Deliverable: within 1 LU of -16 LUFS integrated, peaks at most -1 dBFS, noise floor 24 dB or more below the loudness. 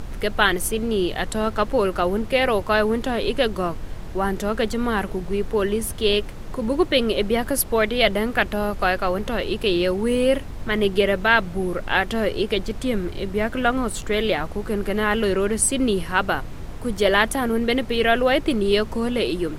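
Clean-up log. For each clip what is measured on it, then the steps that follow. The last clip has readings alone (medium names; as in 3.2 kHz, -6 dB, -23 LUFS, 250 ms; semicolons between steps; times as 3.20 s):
noise floor -33 dBFS; noise floor target -46 dBFS; loudness -22.0 LUFS; peak level -2.0 dBFS; loudness target -16.0 LUFS
-> noise print and reduce 13 dB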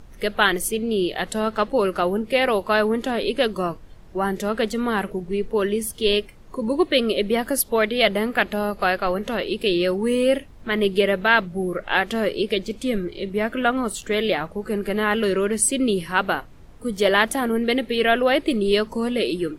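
noise floor -44 dBFS; noise floor target -46 dBFS
-> noise print and reduce 6 dB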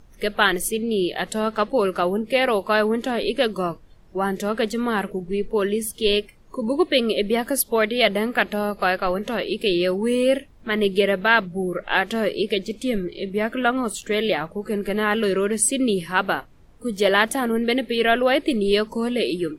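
noise floor -49 dBFS; loudness -22.0 LUFS; peak level -2.0 dBFS; loudness target -16.0 LUFS
-> trim +6 dB; peak limiter -1 dBFS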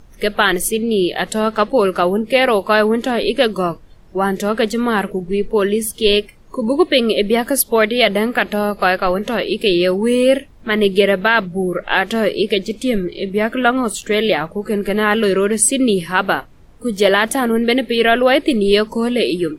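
loudness -16.5 LUFS; peak level -1.0 dBFS; noise floor -43 dBFS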